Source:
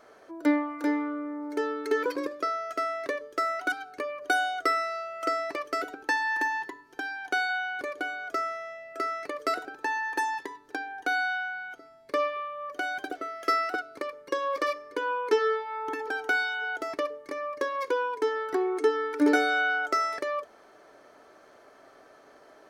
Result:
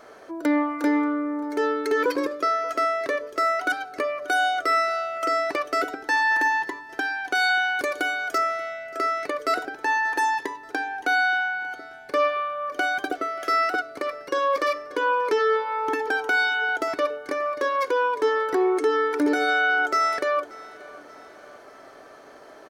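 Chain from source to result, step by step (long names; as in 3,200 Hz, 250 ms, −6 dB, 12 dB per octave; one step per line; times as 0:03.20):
0:07.35–0:08.38: high-shelf EQ 4,200 Hz +10 dB
brickwall limiter −21.5 dBFS, peak gain reduction 10.5 dB
repeating echo 583 ms, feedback 49%, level −22 dB
level +7.5 dB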